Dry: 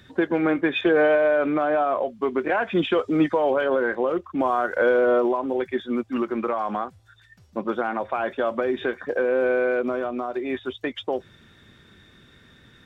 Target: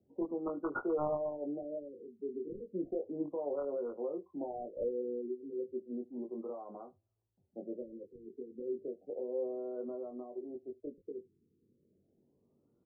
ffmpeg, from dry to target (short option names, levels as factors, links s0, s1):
-filter_complex "[0:a]aderivative,acrossover=split=260|530[s0][s1][s2];[s2]acrusher=bits=4:mix=0:aa=0.5[s3];[s0][s1][s3]amix=inputs=3:normalize=0,asplit=2[s4][s5];[s5]adelay=21,volume=0.631[s6];[s4][s6]amix=inputs=2:normalize=0,aecho=1:1:73:0.0708,afftfilt=real='re*lt(b*sr/1024,470*pow(1500/470,0.5+0.5*sin(2*PI*0.33*pts/sr)))':imag='im*lt(b*sr/1024,470*pow(1500/470,0.5+0.5*sin(2*PI*0.33*pts/sr)))':win_size=1024:overlap=0.75,volume=3.76"